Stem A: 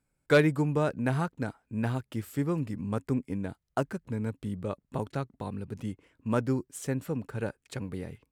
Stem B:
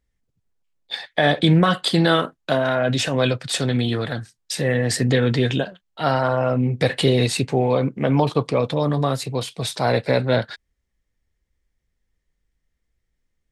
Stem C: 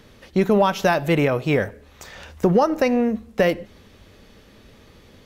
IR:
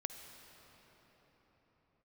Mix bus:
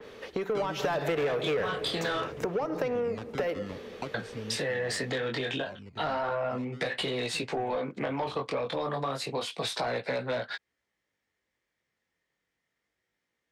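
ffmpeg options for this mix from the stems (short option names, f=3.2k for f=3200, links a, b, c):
-filter_complex "[0:a]acrusher=samples=16:mix=1:aa=0.000001:lfo=1:lforange=25.6:lforate=0.36,lowpass=4.2k,acompressor=threshold=-33dB:ratio=6,adelay=250,volume=-2dB,asplit=2[a][b];[b]volume=-22dB[c];[1:a]highpass=100,flanger=delay=16:depth=6.9:speed=0.29,volume=-8dB,asplit=3[d][e][f];[d]atrim=end=2.41,asetpts=PTS-STARTPTS,afade=t=out:st=2.406:d=0.004:c=hsin[g];[e]atrim=start=2.41:end=4.14,asetpts=PTS-STARTPTS,volume=0[h];[f]atrim=start=4.14,asetpts=PTS-STARTPTS,afade=t=in:d=0.004:c=hsin[i];[g][h][i]concat=n=3:v=0:a=1,asplit=2[j][k];[2:a]equalizer=f=440:t=o:w=0.39:g=12,acompressor=threshold=-17dB:ratio=1.5,adynamicequalizer=threshold=0.0158:dfrequency=3100:dqfactor=0.7:tfrequency=3100:tqfactor=0.7:attack=5:release=100:ratio=0.375:range=2:mode=cutabove:tftype=highshelf,volume=-0.5dB,afade=t=in:st=0.76:d=0.2:silence=0.266073,afade=t=out:st=1.8:d=0.58:silence=0.316228,asplit=2[l][m];[m]volume=-9.5dB[n];[k]apad=whole_len=377763[o];[a][o]sidechaincompress=threshold=-37dB:ratio=8:attack=16:release=873[p];[j][l]amix=inputs=2:normalize=0,asplit=2[q][r];[r]highpass=f=720:p=1,volume=23dB,asoftclip=type=tanh:threshold=-6.5dB[s];[q][s]amix=inputs=2:normalize=0,lowpass=f=2.5k:p=1,volume=-6dB,acompressor=threshold=-28dB:ratio=4,volume=0dB[t];[3:a]atrim=start_sample=2205[u];[c][n]amix=inputs=2:normalize=0[v];[v][u]afir=irnorm=-1:irlink=0[w];[p][t][w]amix=inputs=3:normalize=0,acrossover=split=250|500[x][y][z];[x]acompressor=threshold=-39dB:ratio=4[aa];[y]acompressor=threshold=-37dB:ratio=4[ab];[z]acompressor=threshold=-29dB:ratio=4[ac];[aa][ab][ac]amix=inputs=3:normalize=0"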